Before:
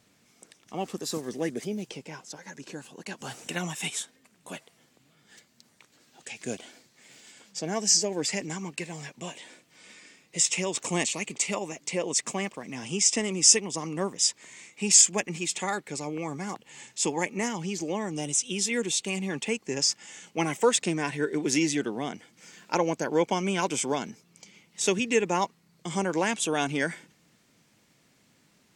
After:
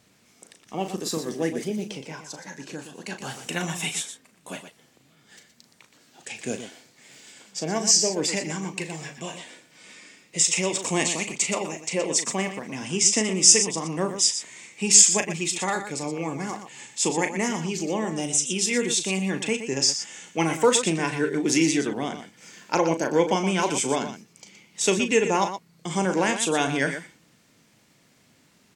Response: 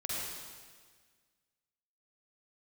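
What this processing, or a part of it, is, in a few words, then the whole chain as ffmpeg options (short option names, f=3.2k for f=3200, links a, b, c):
slapback doubling: -filter_complex "[0:a]asplit=3[a][b][c];[b]adelay=37,volume=-9dB[d];[c]adelay=120,volume=-10dB[e];[a][d][e]amix=inputs=3:normalize=0,volume=3dB"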